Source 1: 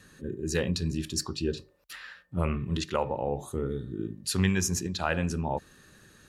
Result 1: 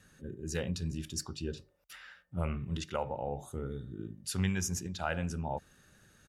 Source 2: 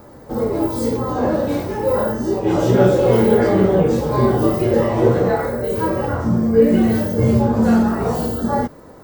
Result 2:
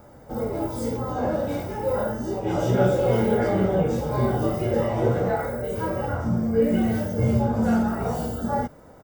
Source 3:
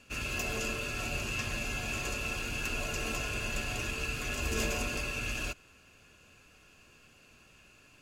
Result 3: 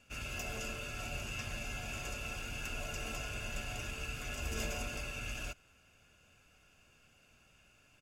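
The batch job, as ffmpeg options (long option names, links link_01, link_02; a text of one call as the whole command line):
ffmpeg -i in.wav -af "bandreject=frequency=4200:width=9.8,aecho=1:1:1.4:0.32,volume=-6.5dB" out.wav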